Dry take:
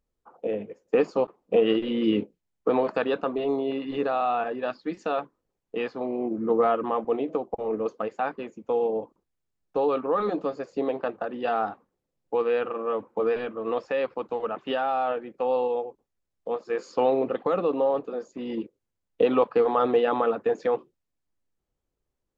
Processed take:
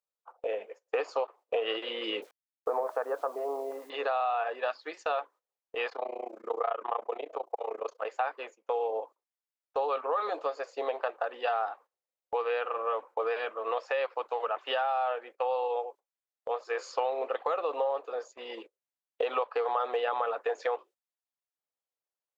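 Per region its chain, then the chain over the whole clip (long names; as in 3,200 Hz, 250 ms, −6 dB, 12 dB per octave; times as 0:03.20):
0:02.22–0:03.90: Bessel low-pass filter 1,000 Hz, order 8 + bit-depth reduction 10 bits, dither none
0:05.89–0:08.05: amplitude modulation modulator 29 Hz, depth 95% + multiband upward and downward compressor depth 40%
whole clip: high-pass filter 560 Hz 24 dB per octave; noise gate −51 dBFS, range −12 dB; downward compressor, threshold −29 dBFS; level +3 dB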